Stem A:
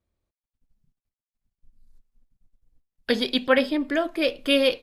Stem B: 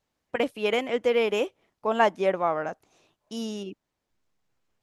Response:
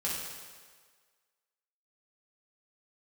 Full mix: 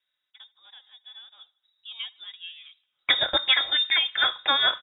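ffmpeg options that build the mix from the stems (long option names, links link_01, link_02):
-filter_complex "[0:a]equalizer=frequency=2100:width_type=o:width=0.78:gain=9,acompressor=threshold=-20dB:ratio=6,volume=2dB[link_01];[1:a]flanger=delay=1.2:depth=2.9:regen=-50:speed=1:shape=sinusoidal,volume=-13dB,afade=type=in:start_time=1.4:duration=0.52:silence=0.334965,asplit=2[link_02][link_03];[link_03]volume=-23.5dB,aecho=0:1:77|154|231|308|385|462|539:1|0.51|0.26|0.133|0.0677|0.0345|0.0176[link_04];[link_01][link_02][link_04]amix=inputs=3:normalize=0,highpass=90,aecho=1:1:4.2:0.32,lowpass=frequency=3300:width_type=q:width=0.5098,lowpass=frequency=3300:width_type=q:width=0.6013,lowpass=frequency=3300:width_type=q:width=0.9,lowpass=frequency=3300:width_type=q:width=2.563,afreqshift=-3900"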